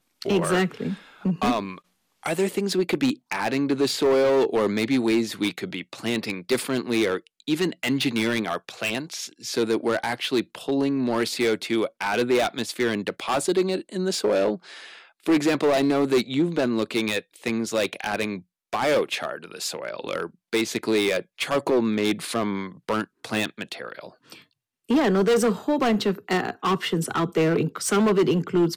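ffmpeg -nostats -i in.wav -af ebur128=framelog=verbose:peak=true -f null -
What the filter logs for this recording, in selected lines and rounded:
Integrated loudness:
  I:         -24.4 LUFS
  Threshold: -34.7 LUFS
Loudness range:
  LRA:         3.6 LU
  Threshold: -44.8 LUFS
  LRA low:   -26.5 LUFS
  LRA high:  -22.9 LUFS
True peak:
  Peak:      -13.6 dBFS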